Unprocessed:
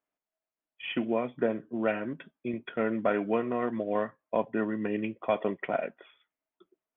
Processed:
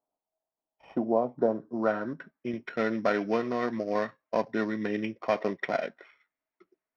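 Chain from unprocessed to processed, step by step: sorted samples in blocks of 8 samples; low-pass sweep 810 Hz -> 2.1 kHz, 1.34–2.59 s

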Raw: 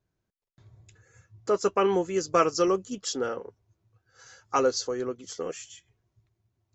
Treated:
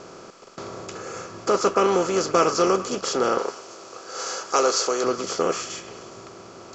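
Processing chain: spectral levelling over time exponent 0.4; 3.38–5.04 s: tone controls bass -14 dB, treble +6 dB; repeats whose band climbs or falls 103 ms, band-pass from 1.3 kHz, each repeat 0.7 oct, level -10 dB

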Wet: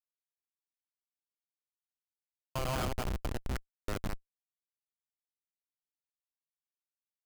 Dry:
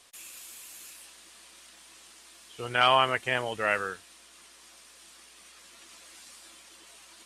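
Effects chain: slices played last to first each 102 ms, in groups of 5; reverse bouncing-ball echo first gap 180 ms, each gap 1.3×, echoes 5; Schmitt trigger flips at -19 dBFS

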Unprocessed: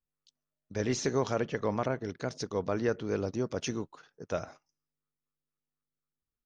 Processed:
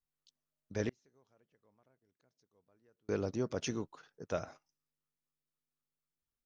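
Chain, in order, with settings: 0.89–3.09 s: inverted gate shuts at -34 dBFS, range -38 dB; trim -3 dB

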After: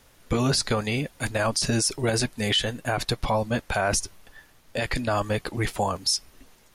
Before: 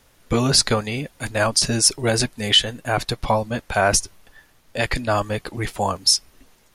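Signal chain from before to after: peak limiter -14 dBFS, peak gain reduction 10.5 dB

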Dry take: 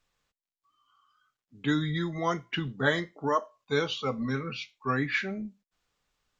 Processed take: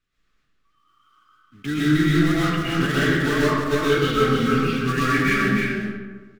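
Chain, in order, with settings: block-companded coder 3-bit; in parallel at -12 dB: Schmitt trigger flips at -24 dBFS; on the sum: tremolo saw up 2.4 Hz, depth 50%; compressor with a negative ratio -24 dBFS, ratio -0.5; low-pass 2.5 kHz 6 dB/octave; high-order bell 690 Hz -11.5 dB 1.2 oct; band-stop 1 kHz, Q 7.5; delay 306 ms -4 dB; reverberation RT60 1.4 s, pre-delay 85 ms, DRR -8.5 dB; trim +4.5 dB

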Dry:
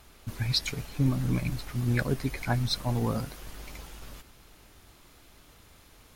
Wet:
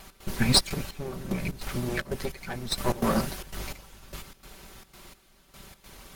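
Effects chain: comb filter that takes the minimum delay 5.2 ms; trance gate "x.xxxx.xx....x" 149 bpm -12 dB; 0.71–2.78 s: compression 6:1, threshold -36 dBFS, peak gain reduction 11 dB; trim +9 dB

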